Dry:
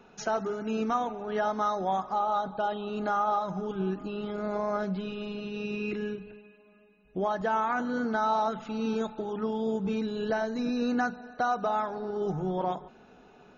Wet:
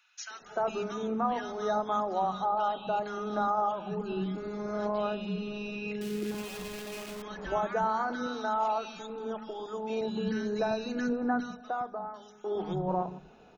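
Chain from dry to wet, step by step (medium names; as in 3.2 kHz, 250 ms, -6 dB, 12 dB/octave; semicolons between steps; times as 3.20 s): 6.01–7.22 s: one-bit comparator; 7.85–9.60 s: peaking EQ 110 Hz -12.5 dB 2.7 oct; 10.98–12.14 s: fade out; three bands offset in time highs, mids, lows 300/410 ms, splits 260/1600 Hz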